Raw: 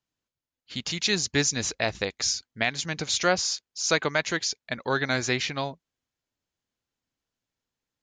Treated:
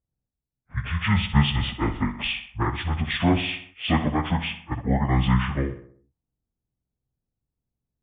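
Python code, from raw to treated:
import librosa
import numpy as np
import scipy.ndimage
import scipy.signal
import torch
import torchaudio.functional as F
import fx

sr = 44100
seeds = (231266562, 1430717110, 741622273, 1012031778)

p1 = fx.pitch_bins(x, sr, semitones=-12.0)
p2 = p1 + fx.echo_feedback(p1, sr, ms=63, feedback_pct=53, wet_db=-11.5, dry=0)
p3 = fx.env_lowpass(p2, sr, base_hz=570.0, full_db=-24.0)
y = fx.bass_treble(p3, sr, bass_db=10, treble_db=-2)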